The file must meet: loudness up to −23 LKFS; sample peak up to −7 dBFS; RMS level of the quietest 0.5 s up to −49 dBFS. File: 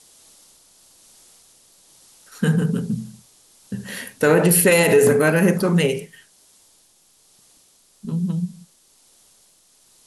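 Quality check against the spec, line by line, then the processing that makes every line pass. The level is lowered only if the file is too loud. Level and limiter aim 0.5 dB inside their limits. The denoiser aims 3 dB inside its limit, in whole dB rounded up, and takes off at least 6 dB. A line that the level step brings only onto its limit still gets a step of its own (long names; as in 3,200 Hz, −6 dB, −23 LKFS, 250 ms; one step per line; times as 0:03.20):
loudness −18.5 LKFS: out of spec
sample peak −5.5 dBFS: out of spec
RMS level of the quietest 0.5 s −57 dBFS: in spec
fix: level −5 dB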